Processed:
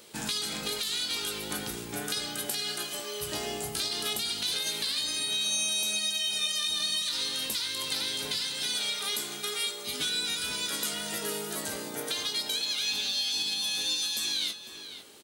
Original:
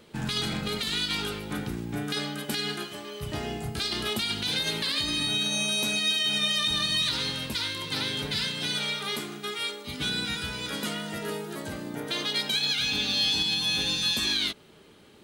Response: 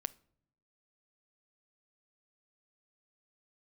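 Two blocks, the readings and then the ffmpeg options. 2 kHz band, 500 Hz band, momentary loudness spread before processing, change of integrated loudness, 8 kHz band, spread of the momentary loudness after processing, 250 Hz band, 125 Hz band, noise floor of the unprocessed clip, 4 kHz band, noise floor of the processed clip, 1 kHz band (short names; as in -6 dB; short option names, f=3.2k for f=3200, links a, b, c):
-5.0 dB, -3.5 dB, 10 LU, -2.0 dB, +4.5 dB, 6 LU, -8.5 dB, -12.0 dB, -53 dBFS, -2.5 dB, -43 dBFS, -4.0 dB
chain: -filter_complex "[0:a]bass=f=250:g=-11,treble=f=4k:g=13,alimiter=limit=-14dB:level=0:latency=1:release=411,acompressor=threshold=-31dB:ratio=2.5,asplit=2[a][b];[b]adelay=19,volume=-10.5dB[c];[a][c]amix=inputs=2:normalize=0,asplit=2[d][e];[e]adelay=501.5,volume=-8dB,highshelf=f=4k:g=-11.3[f];[d][f]amix=inputs=2:normalize=0"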